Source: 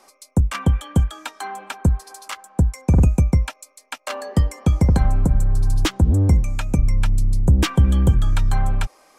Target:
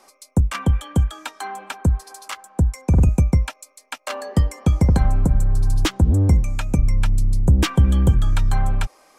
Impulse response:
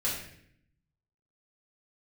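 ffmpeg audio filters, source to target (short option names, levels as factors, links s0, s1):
-filter_complex "[0:a]asettb=1/sr,asplit=3[s0][s1][s2];[s0]atrim=end=0.534[s3];[s1]atrim=start=0.53:end=3.09,asetpts=PTS-STARTPTS,afade=t=in:d=0.004:c=qsin,afade=t=out:st=2.556:d=0.004:c=qsin,acrossover=split=130[s4][s5];[s5]acompressor=threshold=0.112:ratio=2.5[s6];[s4][s6]amix=inputs=2:normalize=0[s7];[s2]atrim=start=3.086[s8];[s3][s7]acrossfade=d=0.004:c1=hsin:c2=qsin[s9];[s9][s8]acrossfade=d=0.004:c1=qsin:c2=hsin"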